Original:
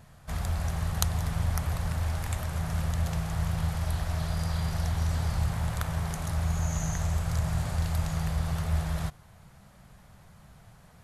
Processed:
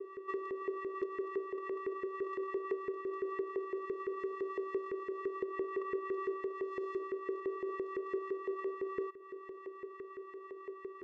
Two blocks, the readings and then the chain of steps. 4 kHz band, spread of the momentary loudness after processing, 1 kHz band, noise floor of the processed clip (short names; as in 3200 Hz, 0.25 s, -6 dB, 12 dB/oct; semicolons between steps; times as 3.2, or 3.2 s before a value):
under -25 dB, 9 LU, -3.0 dB, -51 dBFS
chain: high shelf 3100 Hz -12 dB; compressor 5:1, threshold -40 dBFS, peak gain reduction 15.5 dB; vocoder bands 4, square 384 Hz; LFO band-pass saw up 5.9 Hz 430–1800 Hz; gain +16.5 dB